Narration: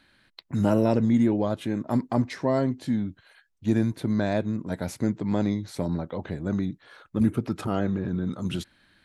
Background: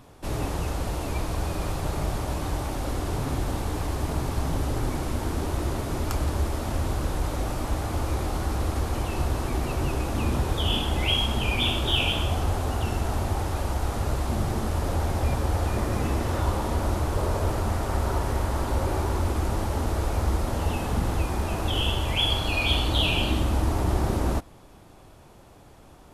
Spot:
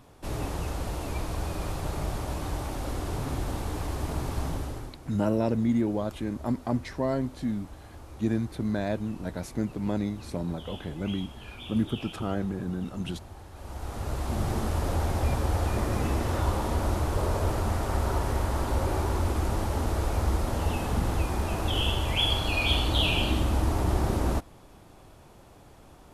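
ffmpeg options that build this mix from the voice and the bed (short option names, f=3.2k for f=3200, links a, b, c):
-filter_complex "[0:a]adelay=4550,volume=-4dB[a];[1:a]volume=13.5dB,afade=t=out:st=4.44:d=0.52:silence=0.177828,afade=t=in:st=13.53:d=0.99:silence=0.141254[b];[a][b]amix=inputs=2:normalize=0"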